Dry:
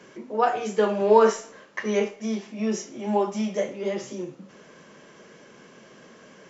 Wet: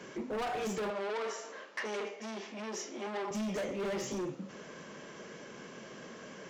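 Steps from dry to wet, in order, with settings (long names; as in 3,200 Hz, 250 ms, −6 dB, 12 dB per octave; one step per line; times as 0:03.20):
downward compressor 6 to 1, threshold −26 dBFS, peak gain reduction 14.5 dB
hard clipping −34.5 dBFS, distortion −6 dB
0:00.90–0:03.31: band-pass filter 360–6,200 Hz
level +1.5 dB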